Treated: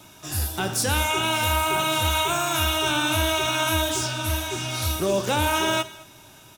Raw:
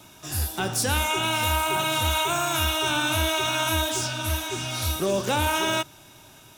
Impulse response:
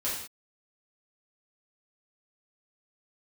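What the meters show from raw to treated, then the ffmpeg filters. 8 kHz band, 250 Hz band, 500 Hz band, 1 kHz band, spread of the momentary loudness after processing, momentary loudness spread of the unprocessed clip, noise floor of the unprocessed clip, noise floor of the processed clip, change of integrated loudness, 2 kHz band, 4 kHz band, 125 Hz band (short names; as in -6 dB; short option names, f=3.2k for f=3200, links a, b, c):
+1.0 dB, +2.0 dB, +2.0 dB, +1.5 dB, 5 LU, 5 LU, -50 dBFS, -49 dBFS, +1.0 dB, +1.0 dB, +1.0 dB, +1.0 dB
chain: -filter_complex "[0:a]aecho=1:1:216:0.075,asplit=2[a][b];[1:a]atrim=start_sample=2205[c];[b][c]afir=irnorm=-1:irlink=0,volume=-17.5dB[d];[a][d]amix=inputs=2:normalize=0"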